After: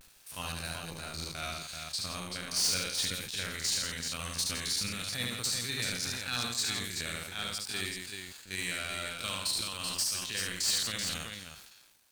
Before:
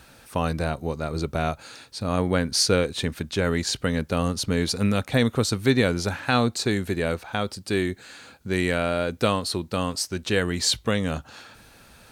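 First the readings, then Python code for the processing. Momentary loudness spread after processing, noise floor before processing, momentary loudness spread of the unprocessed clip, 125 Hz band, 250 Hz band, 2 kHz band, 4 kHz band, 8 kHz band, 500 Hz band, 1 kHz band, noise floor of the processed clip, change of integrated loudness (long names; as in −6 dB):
10 LU, −52 dBFS, 9 LU, −16.5 dB, −19.5 dB, −7.0 dB, −2.5 dB, −1.0 dB, −21.0 dB, −13.0 dB, −57 dBFS, −8.0 dB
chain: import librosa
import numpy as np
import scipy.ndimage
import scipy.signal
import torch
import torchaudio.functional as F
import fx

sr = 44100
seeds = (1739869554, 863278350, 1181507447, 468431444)

p1 = fx.spec_steps(x, sr, hold_ms=50)
p2 = fx.high_shelf(p1, sr, hz=2100.0, db=11.5)
p3 = fx.rider(p2, sr, range_db=10, speed_s=0.5)
p4 = p2 + (p3 * librosa.db_to_amplitude(-1.5))
p5 = fx.tone_stack(p4, sr, knobs='5-5-5')
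p6 = np.sign(p5) * np.maximum(np.abs(p5) - 10.0 ** (-42.5 / 20.0), 0.0)
p7 = p6 * (1.0 - 0.42 / 2.0 + 0.42 / 2.0 * np.cos(2.0 * np.pi * 20.0 * (np.arange(len(p6)) / sr)))
p8 = np.clip(p7, -10.0 ** (-20.5 / 20.0), 10.0 ** (-20.5 / 20.0))
p9 = fx.vibrato(p8, sr, rate_hz=0.4, depth_cents=37.0)
p10 = fx.echo_multitap(p9, sr, ms=(73, 165, 383), db=(-3.0, -9.5, -5.5))
p11 = fx.sustainer(p10, sr, db_per_s=44.0)
y = p11 * librosa.db_to_amplitude(-6.0)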